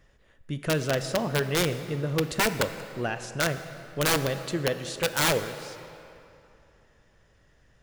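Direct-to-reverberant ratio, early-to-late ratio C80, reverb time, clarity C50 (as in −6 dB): 9.5 dB, 11.5 dB, 2.8 s, 10.5 dB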